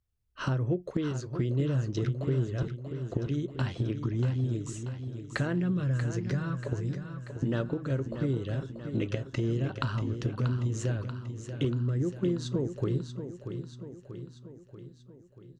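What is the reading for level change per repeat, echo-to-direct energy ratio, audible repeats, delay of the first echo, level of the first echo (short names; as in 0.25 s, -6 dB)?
-5.0 dB, -7.5 dB, 6, 0.636 s, -9.0 dB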